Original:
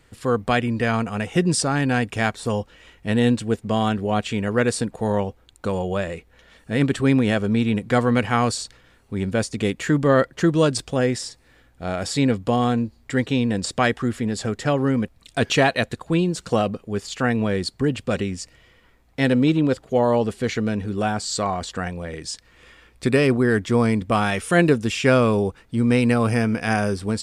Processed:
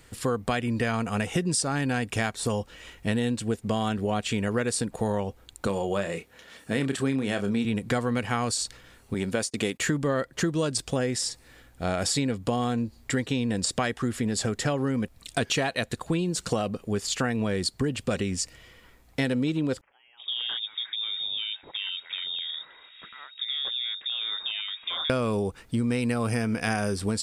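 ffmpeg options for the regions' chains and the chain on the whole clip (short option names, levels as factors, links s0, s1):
-filter_complex "[0:a]asettb=1/sr,asplit=3[s0][s1][s2];[s0]atrim=end=5.674[s3];[s1]atrim=start=5.67:end=7.65,asetpts=PTS-STARTPTS,afade=t=in:d=0.004:c=qsin,afade=t=out:st=1.976:d=0.004:c=qsin,highpass=130,asplit=2[s4][s5];[s5]adelay=30,volume=0.355[s6];[s4][s6]amix=inputs=2:normalize=0,atrim=end_sample=87318[s7];[s2]atrim=start=7.646[s8];[s3][s7]acrossfade=d=0.004:c1=hsin:c2=qsin[s9];[s9][s8]acrossfade=d=0.004:c1=qsin:c2=hsin,asettb=1/sr,asplit=3[s10][s11][s12];[s10]atrim=end=9.144[s13];[s11]atrim=start=9.14:end=9.8,asetpts=PTS-STARTPTS,afade=t=in:d=0.004:c=qsin,afade=t=out:st=0.656:d=0.004:c=qsin,agate=range=0.0398:threshold=0.0141:ratio=16:release=100:detection=peak,highpass=f=260:p=1[s14];[s12]atrim=start=9.796[s15];[s13][s14]acrossfade=d=0.004:c1=hsin:c2=qsin[s16];[s16][s15]acrossfade=d=0.004:c1=qsin:c2=hsin,asettb=1/sr,asplit=3[s17][s18][s19];[s17]atrim=end=19.814[s20];[s18]atrim=start=19.81:end=25.1,asetpts=PTS-STARTPTS,afade=t=in:d=0.004:c=qsin,afade=t=out:st=5.286:d=0.004:c=qsin,acompressor=threshold=0.0224:ratio=6:attack=3.2:release=140:knee=1:detection=peak,acrossover=split=1800[s21][s22];[s21]adelay=360[s23];[s23][s22]amix=inputs=2:normalize=0,atrim=end_sample=233289,lowpass=f=3200:t=q:w=0.5098,lowpass=f=3200:t=q:w=0.6013,lowpass=f=3200:t=q:w=0.9,lowpass=f=3200:t=q:w=2.563,afreqshift=-3800[s24];[s19]atrim=start=25.096[s25];[s20][s24]acrossfade=d=0.004:c1=hsin:c2=qsin[s26];[s26][s25]acrossfade=d=0.004:c1=qsin:c2=hsin,highshelf=f=5200:g=8,acompressor=threshold=0.0562:ratio=6,volume=1.19"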